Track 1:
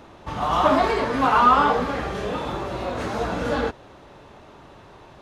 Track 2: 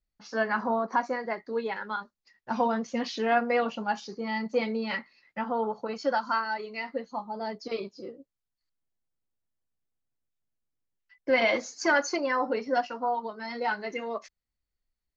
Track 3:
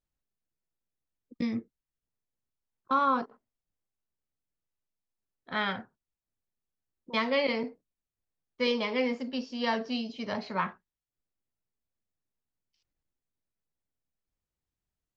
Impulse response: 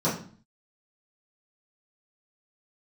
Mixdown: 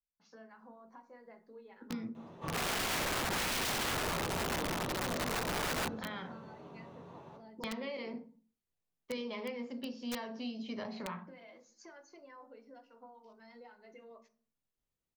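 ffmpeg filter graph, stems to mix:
-filter_complex "[0:a]equalizer=f=68:t=o:w=0.34:g=7.5,adelay=2150,volume=-15dB,asplit=2[a][b];[b]volume=-8dB[c];[1:a]acompressor=threshold=-36dB:ratio=6,volume=-18.5dB,asplit=2[d][e];[e]volume=-19.5dB[f];[2:a]bandreject=f=47.94:t=h:w=4,bandreject=f=95.88:t=h:w=4,bandreject=f=143.82:t=h:w=4,acompressor=threshold=-38dB:ratio=6,adelay=500,volume=-1.5dB,asplit=2[g][h];[h]volume=-21.5dB[i];[3:a]atrim=start_sample=2205[j];[c][f][i]amix=inputs=3:normalize=0[k];[k][j]afir=irnorm=-1:irlink=0[l];[a][d][g][l]amix=inputs=4:normalize=0,acrossover=split=360|3000[m][n][o];[n]acompressor=threshold=-39dB:ratio=2[p];[m][p][o]amix=inputs=3:normalize=0,aeval=exprs='(mod(29.9*val(0)+1,2)-1)/29.9':c=same"

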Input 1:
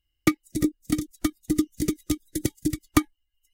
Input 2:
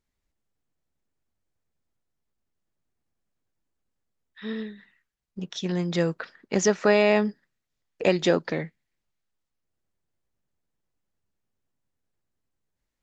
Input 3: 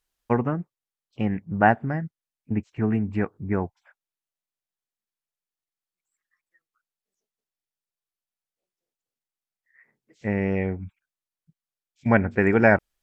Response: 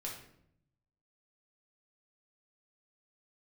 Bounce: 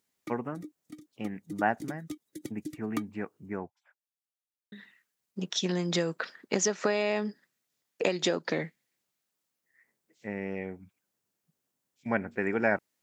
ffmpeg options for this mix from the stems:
-filter_complex "[0:a]highshelf=f=4.6k:g=-7.5,volume=-12.5dB,afade=t=in:st=1.14:d=0.77:silence=0.375837[a];[1:a]highshelf=f=6.4k:g=10,acompressor=threshold=-25dB:ratio=12,volume=2dB,asplit=3[b][c][d];[b]atrim=end=3.57,asetpts=PTS-STARTPTS,afade=t=out:st=3.566:d=0.004:c=hsin[e];[c]atrim=start=3.57:end=4.72,asetpts=PTS-STARTPTS,volume=0[f];[d]atrim=start=4.72,asetpts=PTS-STARTPTS,afade=t=in:d=0.004:c=hsin[g];[e][f][g]concat=n=3:v=0:a=1[h];[2:a]highshelf=f=3.5k:g=5.5,volume=-9.5dB[i];[a][h][i]amix=inputs=3:normalize=0,highpass=180"

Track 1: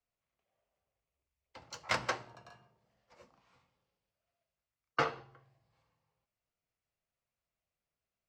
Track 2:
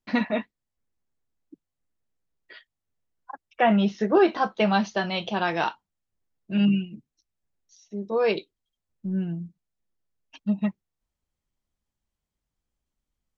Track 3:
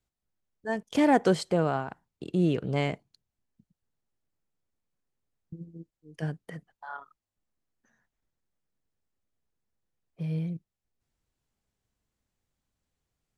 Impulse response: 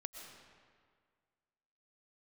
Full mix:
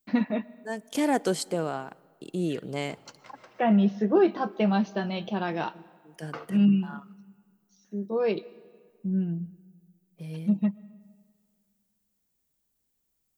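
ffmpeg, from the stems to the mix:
-filter_complex "[0:a]highpass=f=210:p=1,acompressor=threshold=-39dB:ratio=5,adelay=1350,volume=-2.5dB,asplit=2[a][b];[b]volume=-7dB[c];[1:a]volume=-10dB,asplit=2[d][e];[e]volume=-12.5dB[f];[2:a]aemphasis=mode=production:type=riaa,volume=-6.5dB,asplit=3[g][h][i];[h]volume=-17dB[j];[i]apad=whole_len=424968[k];[a][k]sidechaingate=range=-33dB:threshold=-60dB:ratio=16:detection=peak[l];[3:a]atrim=start_sample=2205[m];[c][f][j]amix=inputs=3:normalize=0[n];[n][m]afir=irnorm=-1:irlink=0[o];[l][d][g][o]amix=inputs=4:normalize=0,equalizer=f=210:w=0.43:g=9.5"

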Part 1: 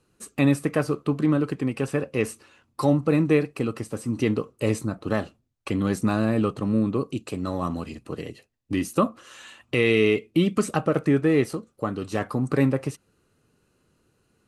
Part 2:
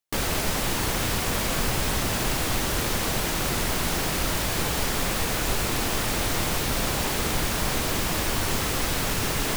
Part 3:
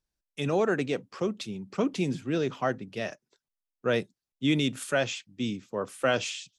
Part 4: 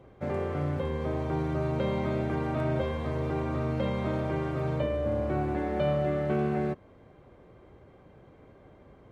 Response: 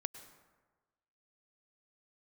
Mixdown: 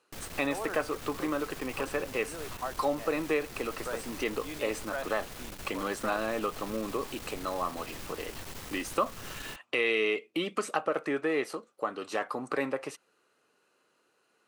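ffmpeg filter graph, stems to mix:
-filter_complex "[0:a]highpass=570,highshelf=f=5.7k:g=-8.5,volume=2.5dB[a];[1:a]aeval=exprs='(tanh(25.1*val(0)+0.7)-tanh(0.7))/25.1':c=same,volume=-11.5dB[b];[2:a]bandpass=f=1k:t=q:w=1.8:csg=0,volume=-2dB[c];[a][b][c]amix=inputs=3:normalize=0,acompressor=threshold=-32dB:ratio=1.5"

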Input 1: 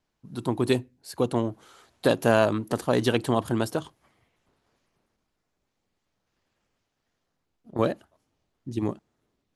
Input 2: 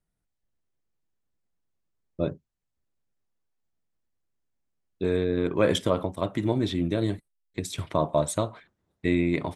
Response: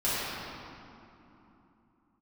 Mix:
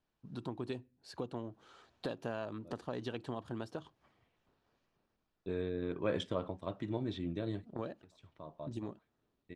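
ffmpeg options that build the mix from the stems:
-filter_complex "[0:a]acompressor=threshold=-35dB:ratio=3,volume=-5.5dB,asplit=2[a][b];[1:a]agate=range=-33dB:threshold=-39dB:ratio=3:detection=peak,adelay=450,volume=-12dB[c];[b]apad=whole_len=441163[d];[c][d]sidechaincompress=threshold=-53dB:ratio=16:attack=22:release=1310[e];[a][e]amix=inputs=2:normalize=0,lowpass=4.7k,bandreject=f=2.1k:w=13"

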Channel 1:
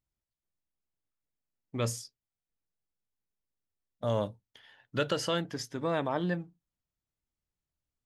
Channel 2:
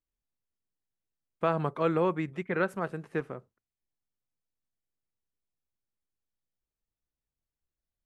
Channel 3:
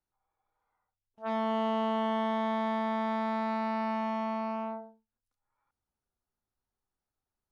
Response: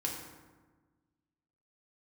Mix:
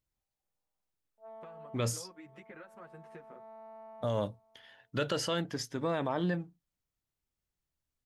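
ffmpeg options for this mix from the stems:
-filter_complex "[0:a]volume=0.5dB,asplit=2[a][b];[1:a]acompressor=threshold=-36dB:ratio=6,asplit=2[c][d];[d]adelay=8.1,afreqshift=0.58[e];[c][e]amix=inputs=2:normalize=1,volume=-3dB[f];[2:a]bandpass=f=570:t=q:w=4:csg=0,volume=-5dB[g];[b]apad=whole_len=331388[h];[g][h]sidechaincompress=threshold=-55dB:ratio=3:attack=28:release=958[i];[f][i]amix=inputs=2:normalize=0,lowshelf=f=490:g=-4.5,acompressor=threshold=-46dB:ratio=6,volume=0dB[j];[a][j]amix=inputs=2:normalize=0,alimiter=limit=-21dB:level=0:latency=1:release=16"

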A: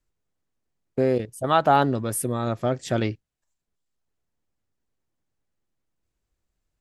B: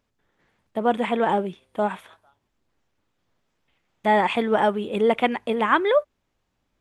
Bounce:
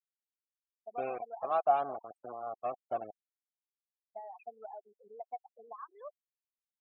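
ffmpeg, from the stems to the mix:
-filter_complex "[0:a]adynamicequalizer=threshold=0.0224:dfrequency=360:dqfactor=0.7:tfrequency=360:tqfactor=0.7:attack=5:release=100:ratio=0.375:range=3:mode=cutabove:tftype=bell,acrusher=bits=3:mix=0:aa=0.000001,volume=-2dB[a];[1:a]lowshelf=f=480:g=-11.5,acompressor=threshold=-25dB:ratio=6,adelay=100,volume=-7dB[b];[a][b]amix=inputs=2:normalize=0,lowpass=f=3.3k:p=1,afftfilt=real='re*gte(hypot(re,im),0.0562)':imag='im*gte(hypot(re,im),0.0562)':win_size=1024:overlap=0.75,asplit=3[c][d][e];[c]bandpass=f=730:t=q:w=8,volume=0dB[f];[d]bandpass=f=1.09k:t=q:w=8,volume=-6dB[g];[e]bandpass=f=2.44k:t=q:w=8,volume=-9dB[h];[f][g][h]amix=inputs=3:normalize=0"

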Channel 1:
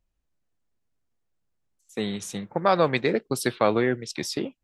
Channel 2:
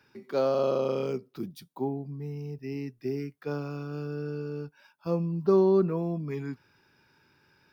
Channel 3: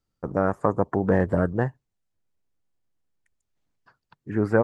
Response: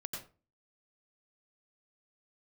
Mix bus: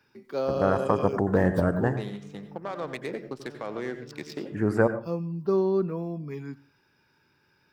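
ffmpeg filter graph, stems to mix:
-filter_complex "[0:a]highpass=f=210:p=1,alimiter=limit=-18.5dB:level=0:latency=1:release=169,adynamicsmooth=sensitivity=4.5:basefreq=1.3k,volume=-7.5dB,asplit=3[a][b][c];[b]volume=-3.5dB[d];[1:a]volume=-3dB,asplit=2[e][f];[f]volume=-19dB[g];[2:a]aemphasis=mode=production:type=cd,adelay=250,volume=-4dB,asplit=2[h][i];[i]volume=-5dB[j];[c]apad=whole_len=340658[k];[e][k]sidechaincompress=threshold=-54dB:ratio=8:attack=16:release=390[l];[3:a]atrim=start_sample=2205[m];[d][g][j]amix=inputs=3:normalize=0[n];[n][m]afir=irnorm=-1:irlink=0[o];[a][l][h][o]amix=inputs=4:normalize=0"

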